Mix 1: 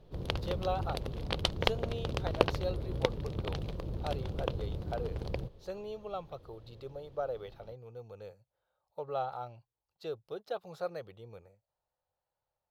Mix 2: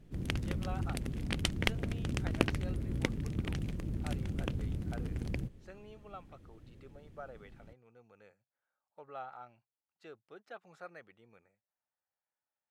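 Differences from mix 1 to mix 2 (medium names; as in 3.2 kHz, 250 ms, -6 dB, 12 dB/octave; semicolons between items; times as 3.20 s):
speech: add band-pass filter 1.2 kHz, Q 0.76; master: add graphic EQ 250/500/1000/2000/4000/8000 Hz +9/-10/-8/+7/-10/+11 dB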